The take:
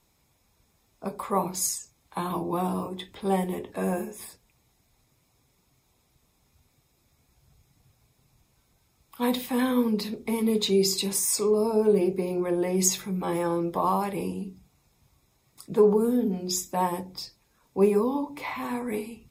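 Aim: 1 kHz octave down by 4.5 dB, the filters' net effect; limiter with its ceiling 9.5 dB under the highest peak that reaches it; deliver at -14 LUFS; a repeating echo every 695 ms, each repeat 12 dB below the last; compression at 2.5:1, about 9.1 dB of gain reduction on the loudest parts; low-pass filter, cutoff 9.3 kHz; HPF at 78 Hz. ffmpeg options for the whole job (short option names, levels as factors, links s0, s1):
-af "highpass=78,lowpass=9300,equalizer=f=1000:t=o:g=-5.5,acompressor=threshold=0.0355:ratio=2.5,alimiter=level_in=1.26:limit=0.0631:level=0:latency=1,volume=0.794,aecho=1:1:695|1390|2085:0.251|0.0628|0.0157,volume=11.2"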